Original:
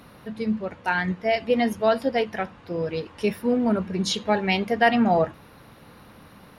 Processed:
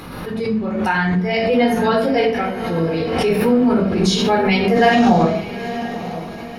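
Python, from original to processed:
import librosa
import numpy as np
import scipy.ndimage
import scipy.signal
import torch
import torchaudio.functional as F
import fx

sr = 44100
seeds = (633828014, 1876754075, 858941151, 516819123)

y = fx.echo_diffused(x, sr, ms=912, feedback_pct=42, wet_db=-12.0)
y = fx.room_shoebox(y, sr, seeds[0], volume_m3=610.0, walls='furnished', distance_m=4.0)
y = fx.pre_swell(y, sr, db_per_s=35.0)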